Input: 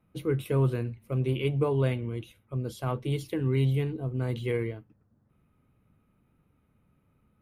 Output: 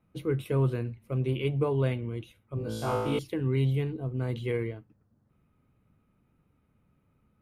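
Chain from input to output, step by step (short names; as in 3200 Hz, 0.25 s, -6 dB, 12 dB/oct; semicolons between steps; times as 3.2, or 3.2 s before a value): high shelf 8000 Hz -5 dB; 2.55–3.19 flutter echo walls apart 3.1 m, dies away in 1.1 s; gain -1 dB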